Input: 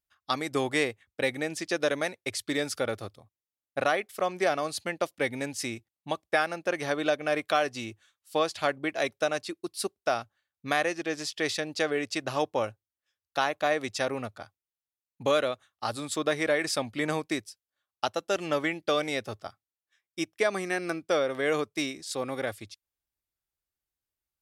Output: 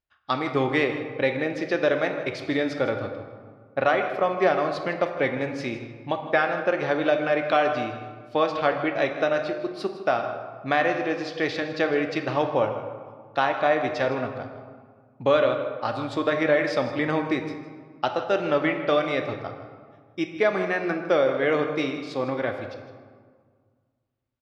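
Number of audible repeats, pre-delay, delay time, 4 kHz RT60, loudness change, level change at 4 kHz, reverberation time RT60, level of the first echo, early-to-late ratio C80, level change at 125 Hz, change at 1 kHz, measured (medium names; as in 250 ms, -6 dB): 1, 3 ms, 158 ms, 0.95 s, +4.5 dB, -1.0 dB, 1.7 s, -14.5 dB, 7.5 dB, +6.5 dB, +5.5 dB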